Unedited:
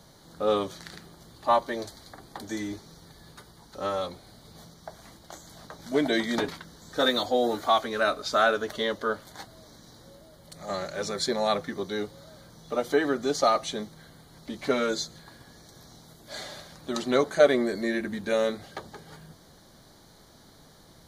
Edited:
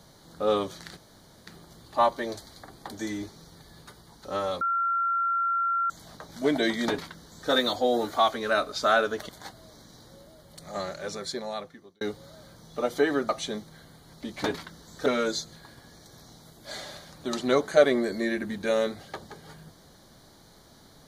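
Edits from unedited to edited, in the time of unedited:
0.97 insert room tone 0.50 s
4.11–5.4 bleep 1370 Hz -23 dBFS
6.38–7 copy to 14.69
8.79–9.23 cut
10.59–11.95 fade out
13.23–13.54 cut

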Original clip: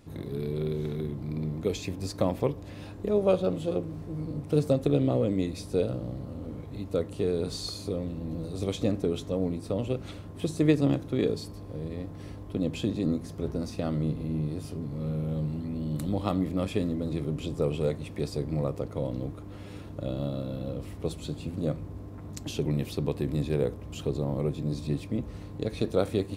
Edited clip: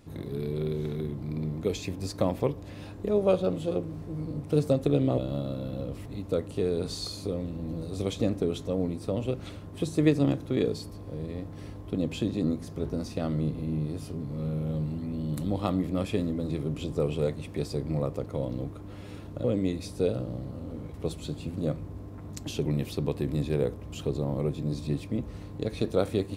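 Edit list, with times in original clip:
5.18–6.68 swap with 20.06–20.94

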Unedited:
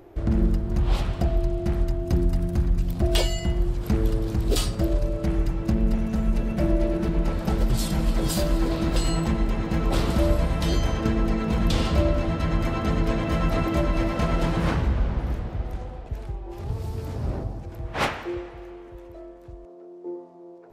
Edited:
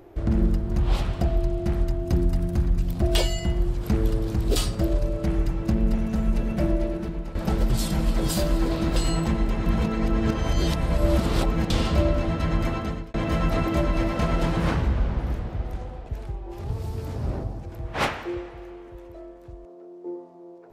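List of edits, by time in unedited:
6.58–7.35 fade out, to -12.5 dB
9.66–11.7 reverse
12.69–13.14 fade out

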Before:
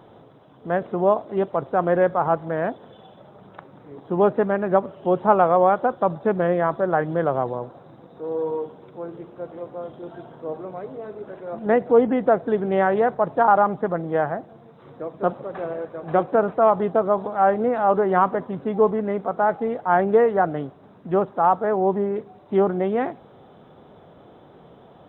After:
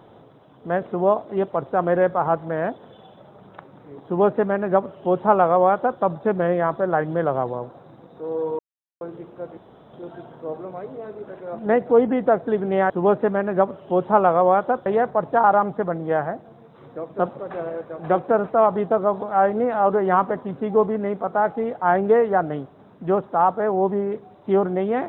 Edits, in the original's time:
4.05–6.01 copy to 12.9
8.59–9.01 mute
9.57–9.93 room tone

